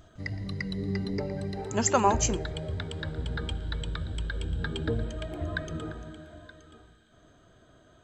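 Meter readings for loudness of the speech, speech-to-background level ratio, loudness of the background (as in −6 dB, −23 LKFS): −27.0 LKFS, 7.0 dB, −34.0 LKFS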